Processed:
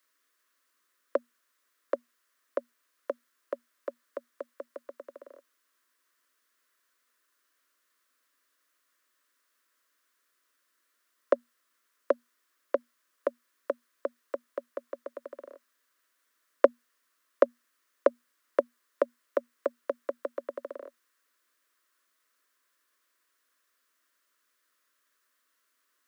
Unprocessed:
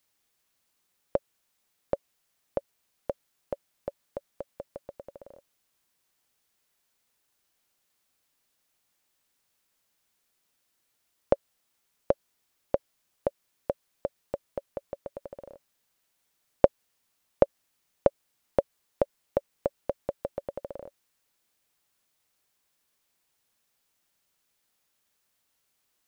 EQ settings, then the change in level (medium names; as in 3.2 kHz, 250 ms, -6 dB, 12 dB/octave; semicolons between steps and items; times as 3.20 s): Chebyshev high-pass 240 Hz, order 10; Butterworth band-stop 820 Hz, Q 3.4; high-order bell 1.4 kHz +8 dB 1.1 oct; 0.0 dB